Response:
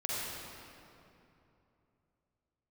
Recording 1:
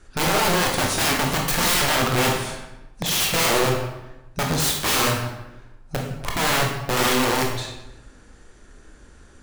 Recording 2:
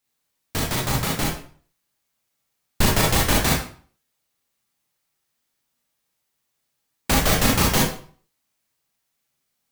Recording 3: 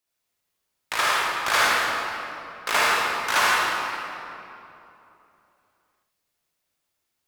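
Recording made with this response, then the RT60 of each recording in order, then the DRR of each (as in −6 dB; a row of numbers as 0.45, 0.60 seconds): 3; 0.95, 0.45, 2.9 seconds; −0.5, −2.0, −7.0 decibels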